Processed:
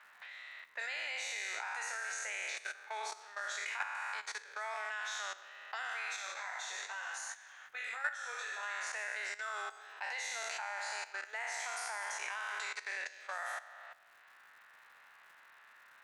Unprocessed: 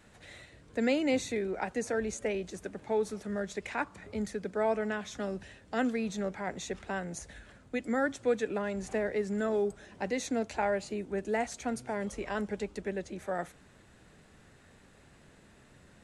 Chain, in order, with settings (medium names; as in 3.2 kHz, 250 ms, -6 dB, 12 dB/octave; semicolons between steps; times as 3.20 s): spectral sustain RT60 1.43 s; high-pass 1 kHz 24 dB/octave; level-controlled noise filter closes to 1.7 kHz, open at -35 dBFS; treble shelf 9.3 kHz -8 dB; level held to a coarse grid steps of 15 dB; 6.16–8.63 s: chorus 2.5 Hz, delay 17.5 ms, depth 4 ms; crackle 260 per s -70 dBFS; three bands compressed up and down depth 40%; trim +4.5 dB